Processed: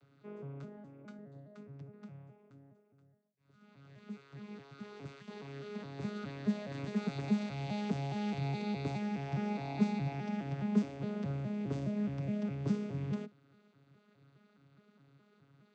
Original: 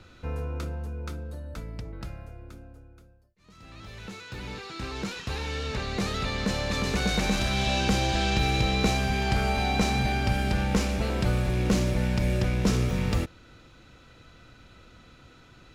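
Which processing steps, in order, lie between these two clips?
vocoder with an arpeggio as carrier bare fifth, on C#3, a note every 208 ms
0:00.77–0:01.19: comb filter 3.5 ms, depth 57%
level −7.5 dB

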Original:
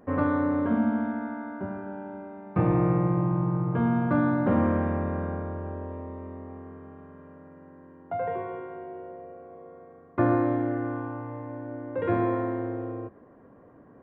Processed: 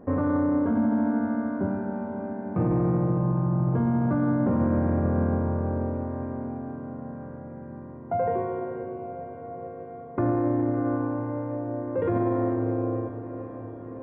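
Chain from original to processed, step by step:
tilt shelving filter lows +7.5 dB, about 1,400 Hz
brickwall limiter −17 dBFS, peak gain reduction 11 dB
on a send: feedback delay with all-pass diffusion 537 ms, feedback 72%, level −11 dB

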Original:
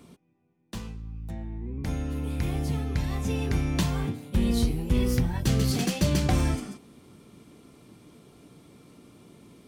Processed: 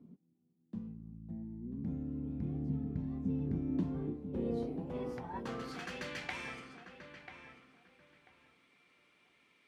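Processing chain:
band-pass filter sweep 210 Hz → 2,200 Hz, 0:03.52–0:06.35
on a send: feedback echo with a low-pass in the loop 990 ms, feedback 25%, low-pass 2,100 Hz, level −8 dB
on the sum: level −1 dB

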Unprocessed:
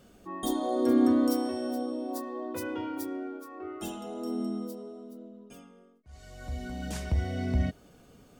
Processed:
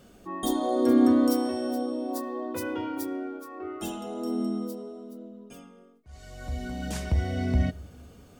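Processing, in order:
on a send at −22 dB: gate on every frequency bin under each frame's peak −25 dB strong + convolution reverb RT60 1.2 s, pre-delay 3 ms
on the sum: level +3 dB

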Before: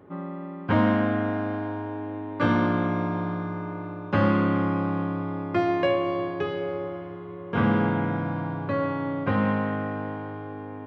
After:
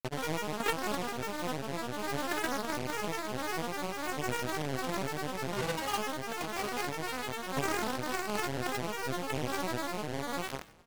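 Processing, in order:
fade-out on the ending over 0.65 s
parametric band 830 Hz +8.5 dB 1.1 octaves
downward compressor 16 to 1, threshold −29 dBFS, peak gain reduction 16 dB
tuned comb filter 110 Hz, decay 0.2 s, harmonics odd, mix 30%
phases set to zero 245 Hz
bit reduction 6 bits
echo with shifted repeats 145 ms, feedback 49%, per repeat −75 Hz, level −18 dB
granular cloud, pitch spread up and down by 12 semitones
amplitude modulation by smooth noise, depth 50%
level +8 dB

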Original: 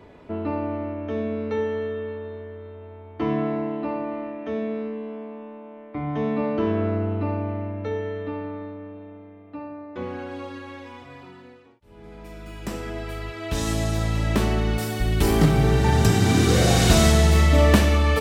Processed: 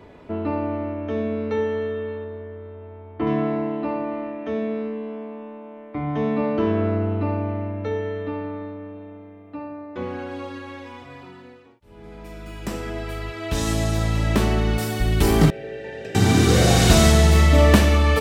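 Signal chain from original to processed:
0:02.24–0:03.27: high-frequency loss of the air 260 metres
0:15.50–0:16.15: formant filter e
level +2 dB

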